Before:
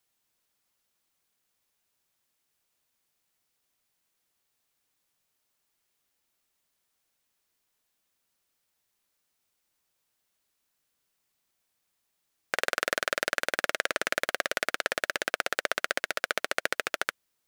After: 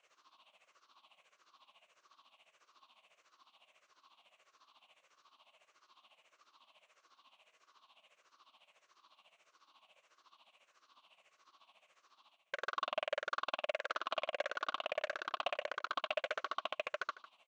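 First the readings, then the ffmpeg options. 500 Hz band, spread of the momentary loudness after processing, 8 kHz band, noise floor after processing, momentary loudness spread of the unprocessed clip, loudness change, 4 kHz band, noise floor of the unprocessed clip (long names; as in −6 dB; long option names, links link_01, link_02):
−6.0 dB, 3 LU, −23.5 dB, −78 dBFS, 2 LU, −10.0 dB, −9.5 dB, −79 dBFS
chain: -filter_complex "[0:a]afftfilt=real='re*pow(10,12/40*sin(2*PI*(0.51*log(max(b,1)*sr/1024/100)/log(2)-(-1.6)*(pts-256)/sr)))':imag='im*pow(10,12/40*sin(2*PI*(0.51*log(max(b,1)*sr/1024/100)/log(2)-(-1.6)*(pts-256)/sr)))':win_size=1024:overlap=0.75,asplit=2[link_01][link_02];[link_02]acontrast=82,volume=2dB[link_03];[link_01][link_03]amix=inputs=2:normalize=0,tremolo=f=14:d=0.8,areverse,acompressor=threshold=-27dB:ratio=20,areverse,alimiter=limit=-21.5dB:level=0:latency=1:release=74,equalizer=frequency=1100:width_type=o:width=0.33:gain=13.5,asoftclip=type=hard:threshold=-32dB,highpass=410,equalizer=frequency=430:width_type=q:width=4:gain=-6,equalizer=frequency=620:width_type=q:width=4:gain=6,equalizer=frequency=1800:width_type=q:width=4:gain=-7,equalizer=frequency=2800:width_type=q:width=4:gain=6,equalizer=frequency=5000:width_type=q:width=4:gain=-8,lowpass=frequency=5100:width=0.5412,lowpass=frequency=5100:width=1.3066,asplit=2[link_04][link_05];[link_05]adelay=151.6,volume=-16dB,highshelf=frequency=4000:gain=-3.41[link_06];[link_04][link_06]amix=inputs=2:normalize=0,volume=4dB"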